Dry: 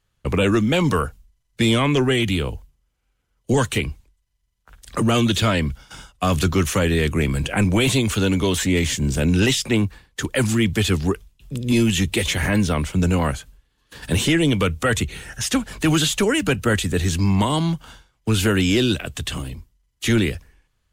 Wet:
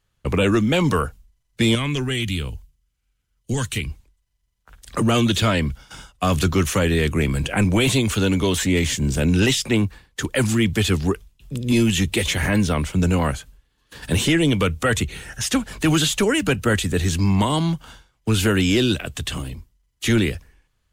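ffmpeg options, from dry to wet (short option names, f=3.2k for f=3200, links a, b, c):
-filter_complex "[0:a]asettb=1/sr,asplit=3[a][b][c];[a]atrim=end=1.754[d];[b]atrim=start=1.75:end=3.9,asetpts=PTS-STARTPTS,afade=t=in:d=0.004:c=qsin,afade=t=out:st=2.146:d=0.004:c=qsin,equalizer=f=610:w=0.47:g=-11[e];[c]atrim=start=3.896[f];[d][e]acrossfade=d=0.004:c1=hsin:c2=qsin[g];[g][f]acrossfade=d=0.004:c1=qsin:c2=hsin"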